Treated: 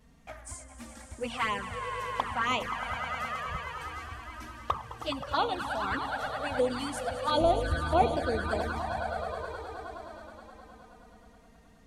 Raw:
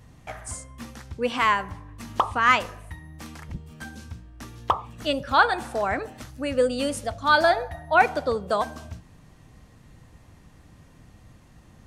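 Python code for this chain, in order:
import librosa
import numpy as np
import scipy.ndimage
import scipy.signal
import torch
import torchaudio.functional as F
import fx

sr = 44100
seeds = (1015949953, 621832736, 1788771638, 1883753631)

y = fx.tilt_eq(x, sr, slope=-3.5, at=(7.37, 8.17))
y = fx.echo_swell(y, sr, ms=105, loudest=5, wet_db=-12.5)
y = fx.env_flanger(y, sr, rest_ms=4.7, full_db=-15.5)
y = F.gain(torch.from_numpy(y), -4.5).numpy()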